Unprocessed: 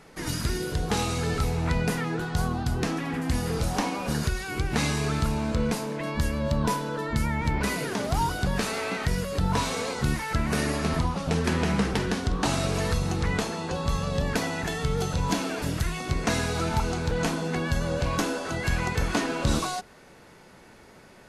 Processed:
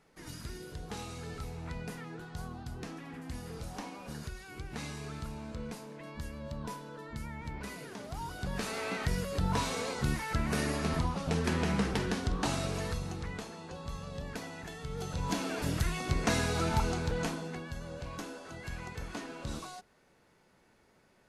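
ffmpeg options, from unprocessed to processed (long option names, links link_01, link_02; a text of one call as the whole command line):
ffmpeg -i in.wav -af "volume=5dB,afade=type=in:start_time=8.22:duration=0.7:silence=0.334965,afade=type=out:start_time=12.29:duration=1.05:silence=0.375837,afade=type=in:start_time=14.86:duration=0.87:silence=0.298538,afade=type=out:start_time=16.84:duration=0.82:silence=0.266073" out.wav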